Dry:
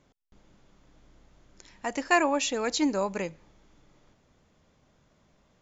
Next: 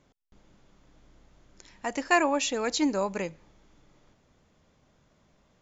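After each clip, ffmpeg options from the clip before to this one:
ffmpeg -i in.wav -af anull out.wav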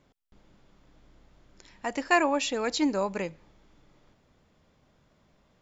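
ffmpeg -i in.wav -af "equalizer=frequency=6400:width_type=o:width=0.27:gain=-6" out.wav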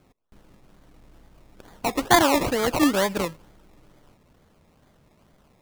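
ffmpeg -i in.wav -af "acrusher=samples=23:mix=1:aa=0.000001:lfo=1:lforange=13.8:lforate=2.2,volume=6dB" out.wav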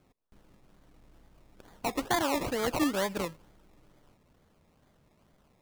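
ffmpeg -i in.wav -af "alimiter=limit=-12.5dB:level=0:latency=1:release=315,volume=-6.5dB" out.wav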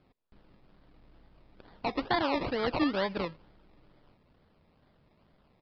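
ffmpeg -i in.wav -af "aresample=11025,aresample=44100" out.wav

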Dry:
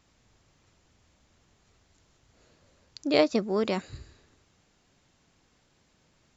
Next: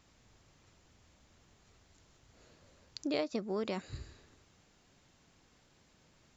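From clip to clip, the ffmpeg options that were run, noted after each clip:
ffmpeg -i in.wav -af "acompressor=threshold=-35dB:ratio=3" out.wav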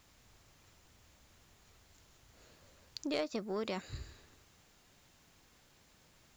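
ffmpeg -i in.wav -af "asoftclip=type=tanh:threshold=-25dB,equalizer=frequency=230:width=0.42:gain=-4,acrusher=bits=11:mix=0:aa=0.000001,volume=2dB" out.wav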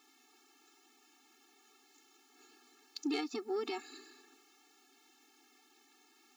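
ffmpeg -i in.wav -af "afftfilt=real='re*eq(mod(floor(b*sr/1024/230),2),1)':imag='im*eq(mod(floor(b*sr/1024/230),2),1)':win_size=1024:overlap=0.75,volume=3.5dB" out.wav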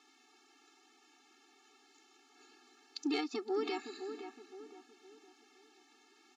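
ffmpeg -i in.wav -filter_complex "[0:a]highpass=200,lowpass=6500,asplit=2[link_01][link_02];[link_02]adelay=515,lowpass=frequency=1600:poles=1,volume=-8.5dB,asplit=2[link_03][link_04];[link_04]adelay=515,lowpass=frequency=1600:poles=1,volume=0.41,asplit=2[link_05][link_06];[link_06]adelay=515,lowpass=frequency=1600:poles=1,volume=0.41,asplit=2[link_07][link_08];[link_08]adelay=515,lowpass=frequency=1600:poles=1,volume=0.41,asplit=2[link_09][link_10];[link_10]adelay=515,lowpass=frequency=1600:poles=1,volume=0.41[link_11];[link_01][link_03][link_05][link_07][link_09][link_11]amix=inputs=6:normalize=0,volume=1.5dB" out.wav

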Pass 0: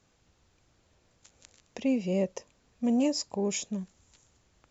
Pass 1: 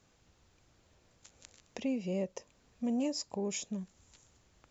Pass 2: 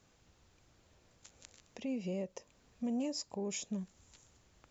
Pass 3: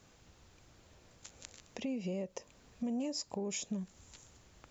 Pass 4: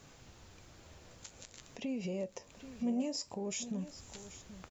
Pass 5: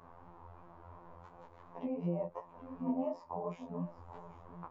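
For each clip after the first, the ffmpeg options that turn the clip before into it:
ffmpeg -i in.wav -af "acompressor=threshold=-42dB:ratio=1.5" out.wav
ffmpeg -i in.wav -af "alimiter=level_in=5.5dB:limit=-24dB:level=0:latency=1:release=157,volume=-5.5dB" out.wav
ffmpeg -i in.wav -af "acompressor=threshold=-42dB:ratio=2.5,volume=5.5dB" out.wav
ffmpeg -i in.wav -af "alimiter=level_in=10.5dB:limit=-24dB:level=0:latency=1:release=195,volume=-10.5dB,flanger=delay=7:depth=5.5:regen=70:speed=0.53:shape=sinusoidal,aecho=1:1:783:0.2,volume=9.5dB" out.wav
ffmpeg -i in.wav -af "lowpass=frequency=1000:width_type=q:width=4.9,afftfilt=real='hypot(re,im)*cos(PI*b)':imag='0':win_size=2048:overlap=0.75,flanger=delay=17:depth=4.8:speed=2.8,volume=6.5dB" out.wav

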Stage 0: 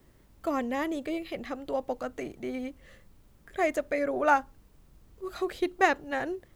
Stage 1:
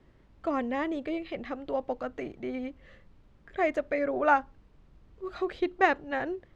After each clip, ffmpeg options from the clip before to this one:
ffmpeg -i in.wav -af "lowpass=3500" out.wav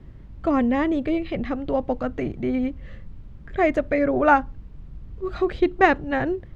ffmpeg -i in.wav -af "bass=frequency=250:gain=13,treble=frequency=4000:gain=-2,volume=6dB" out.wav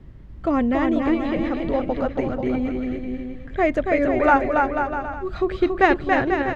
ffmpeg -i in.wav -af "aecho=1:1:280|490|647.5|765.6|854.2:0.631|0.398|0.251|0.158|0.1" out.wav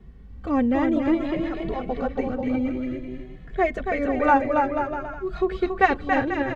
ffmpeg -i in.wav -filter_complex "[0:a]asplit=2[link_01][link_02];[link_02]adelay=2.3,afreqshift=0.54[link_03];[link_01][link_03]amix=inputs=2:normalize=1" out.wav

